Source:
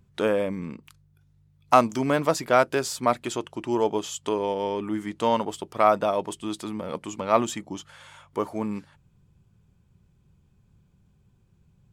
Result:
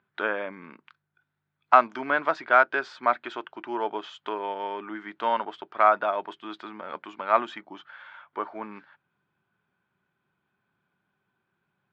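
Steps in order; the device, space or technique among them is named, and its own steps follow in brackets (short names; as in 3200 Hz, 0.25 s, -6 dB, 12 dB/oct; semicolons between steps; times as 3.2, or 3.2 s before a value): 7.62–8.62 air absorption 52 m; phone earpiece (speaker cabinet 470–3300 Hz, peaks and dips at 490 Hz -9 dB, 1500 Hz +9 dB, 2800 Hz -4 dB)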